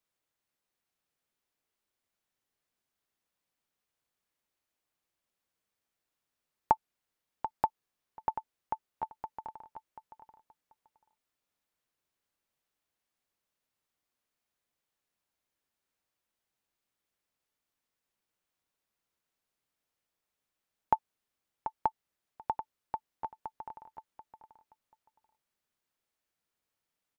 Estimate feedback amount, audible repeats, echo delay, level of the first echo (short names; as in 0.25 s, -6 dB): 17%, 2, 0.736 s, -10.5 dB